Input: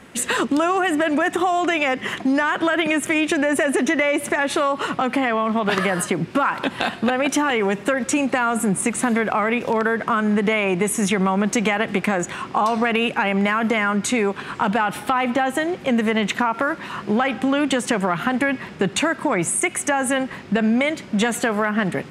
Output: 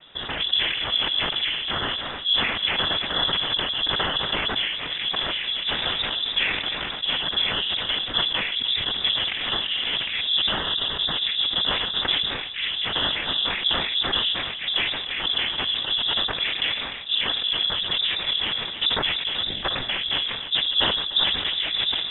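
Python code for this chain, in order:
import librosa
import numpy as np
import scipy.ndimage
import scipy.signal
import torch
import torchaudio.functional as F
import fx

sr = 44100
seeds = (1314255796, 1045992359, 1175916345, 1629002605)

p1 = fx.pitch_glide(x, sr, semitones=2.5, runs='ending unshifted')
p2 = fx.peak_eq(p1, sr, hz=1000.0, db=-12.5, octaves=1.3)
p3 = fx.rider(p2, sr, range_db=10, speed_s=0.5)
p4 = p2 + F.gain(torch.from_numpy(p3), -1.0).numpy()
p5 = fx.noise_vocoder(p4, sr, seeds[0], bands=6)
p6 = p5 + fx.echo_single(p5, sr, ms=301, db=-14.0, dry=0)
p7 = fx.freq_invert(p6, sr, carrier_hz=3700)
p8 = fx.sustainer(p7, sr, db_per_s=37.0)
y = F.gain(torch.from_numpy(p8), -7.0).numpy()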